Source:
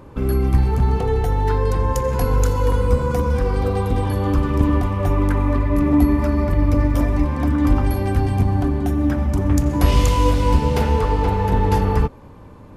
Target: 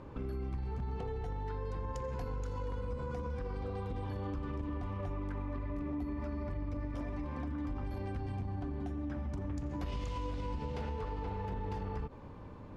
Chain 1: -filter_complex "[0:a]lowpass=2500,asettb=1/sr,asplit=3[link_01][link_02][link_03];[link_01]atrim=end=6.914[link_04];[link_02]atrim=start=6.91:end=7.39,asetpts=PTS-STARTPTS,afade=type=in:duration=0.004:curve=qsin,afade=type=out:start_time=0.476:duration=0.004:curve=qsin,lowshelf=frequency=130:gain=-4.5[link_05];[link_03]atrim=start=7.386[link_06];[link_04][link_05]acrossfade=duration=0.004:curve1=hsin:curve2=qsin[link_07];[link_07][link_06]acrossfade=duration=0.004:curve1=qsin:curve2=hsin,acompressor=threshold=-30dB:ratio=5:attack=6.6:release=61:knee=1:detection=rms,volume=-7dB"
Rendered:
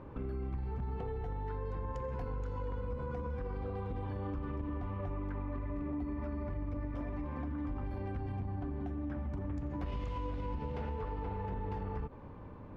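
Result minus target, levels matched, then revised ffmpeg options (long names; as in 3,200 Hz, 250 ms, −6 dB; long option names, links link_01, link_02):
4,000 Hz band −5.5 dB
-filter_complex "[0:a]lowpass=5200,asettb=1/sr,asplit=3[link_01][link_02][link_03];[link_01]atrim=end=6.914[link_04];[link_02]atrim=start=6.91:end=7.39,asetpts=PTS-STARTPTS,afade=type=in:duration=0.004:curve=qsin,afade=type=out:start_time=0.476:duration=0.004:curve=qsin,lowshelf=frequency=130:gain=-4.5[link_05];[link_03]atrim=start=7.386[link_06];[link_04][link_05]acrossfade=duration=0.004:curve1=hsin:curve2=qsin[link_07];[link_07][link_06]acrossfade=duration=0.004:curve1=qsin:curve2=hsin,acompressor=threshold=-30dB:ratio=5:attack=6.6:release=61:knee=1:detection=rms,volume=-7dB"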